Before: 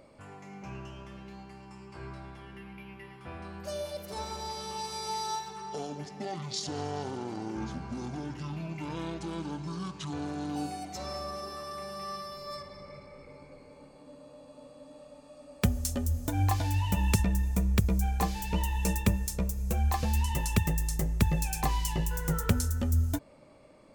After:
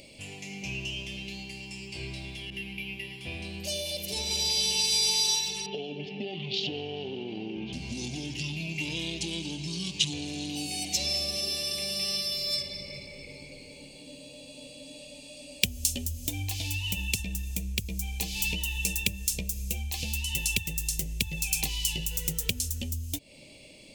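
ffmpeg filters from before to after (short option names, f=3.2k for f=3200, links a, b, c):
-filter_complex "[0:a]asettb=1/sr,asplit=3[a][b][c];[a]atrim=end=2.504[d];[b]atrim=start=2.5:end=4.31,asetpts=PTS-STARTPTS,afade=t=in:d=0.004:c=qsin,afade=t=out:st=1.806:d=0.004:c=qsin,adynamicequalizer=threshold=0.002:dfrequency=1600:dqfactor=0.7:tfrequency=1600:tqfactor=0.7:attack=5:release=100:ratio=0.375:range=2:mode=cutabove:tftype=highshelf[e];[c]atrim=start=4.306[f];[d][e]acrossfade=d=0.004:c1=hsin:c2=qsin[g];[g][f]acrossfade=d=0.004:c1=qsin:c2=hsin,asettb=1/sr,asplit=3[h][i][j];[h]atrim=end=5.664[k];[i]atrim=start=5.66:end=7.73,asetpts=PTS-STARTPTS,afade=t=in:d=0.004:c=qsin,afade=t=out:st=2.066:d=0.004:c=qsin,highpass=110,equalizer=f=200:t=q:w=4:g=5,equalizer=f=410:t=q:w=4:g=8,equalizer=f=710:t=q:w=4:g=3,equalizer=f=2k:t=q:w=4:g=-6,equalizer=f=2.9k:t=q:w=4:g=4,lowpass=f=3k:w=0.5412,lowpass=f=3k:w=1.3066[l];[j]atrim=start=7.726[m];[k][l]acrossfade=d=0.004:c1=hsin:c2=qsin[n];[n][m]acrossfade=d=0.004:c1=qsin:c2=hsin,equalizer=f=1.3k:w=1.1:g=-13.5,acompressor=threshold=-38dB:ratio=6,highshelf=f=1.9k:t=q:w=3:g=12,volume=5dB"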